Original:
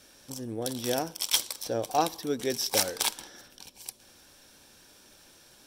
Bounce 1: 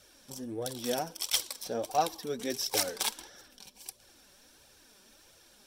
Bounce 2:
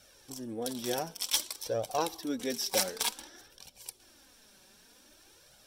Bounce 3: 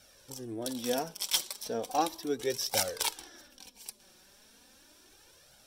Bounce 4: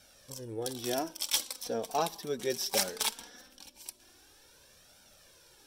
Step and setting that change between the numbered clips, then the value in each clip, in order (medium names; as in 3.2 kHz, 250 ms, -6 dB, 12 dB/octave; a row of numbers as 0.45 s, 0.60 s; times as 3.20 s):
flange, rate: 1.5 Hz, 0.54 Hz, 0.36 Hz, 0.2 Hz